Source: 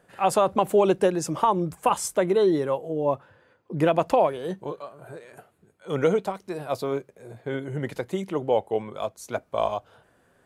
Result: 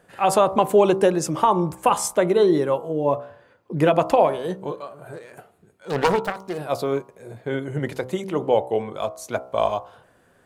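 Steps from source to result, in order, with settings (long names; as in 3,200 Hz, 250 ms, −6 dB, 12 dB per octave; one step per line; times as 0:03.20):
0:05.13–0:06.58: phase distortion by the signal itself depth 0.66 ms
hum removal 64.03 Hz, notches 22
level +4 dB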